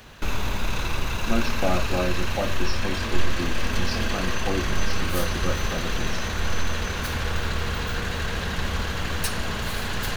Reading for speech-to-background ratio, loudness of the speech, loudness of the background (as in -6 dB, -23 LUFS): -3.5 dB, -31.5 LUFS, -28.0 LUFS